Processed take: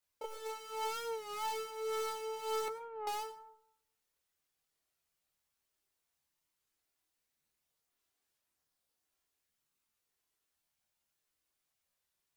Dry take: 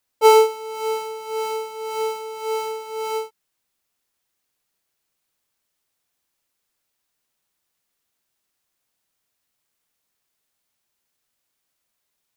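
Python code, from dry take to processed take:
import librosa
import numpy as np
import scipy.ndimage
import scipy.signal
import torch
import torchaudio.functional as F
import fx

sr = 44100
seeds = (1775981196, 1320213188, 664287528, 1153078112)

y = fx.tracing_dist(x, sr, depth_ms=0.13)
y = fx.noise_reduce_blind(y, sr, reduce_db=10)
y = fx.dynamic_eq(y, sr, hz=480.0, q=1.3, threshold_db=-38.0, ratio=4.0, max_db=-5)
y = fx.over_compress(y, sr, threshold_db=-36.0, ratio=-1.0)
y = fx.chorus_voices(y, sr, voices=4, hz=0.45, base_ms=27, depth_ms=1.5, mix_pct=50)
y = fx.ladder_lowpass(y, sr, hz=1800.0, resonance_pct=30, at=(2.68, 3.08))
y = fx.doubler(y, sr, ms=13.0, db=-10.5)
y = fx.rev_plate(y, sr, seeds[0], rt60_s=0.79, hf_ratio=0.35, predelay_ms=80, drr_db=11.5)
y = fx.record_warp(y, sr, rpm=33.33, depth_cents=100.0)
y = F.gain(torch.from_numpy(y), 1.5).numpy()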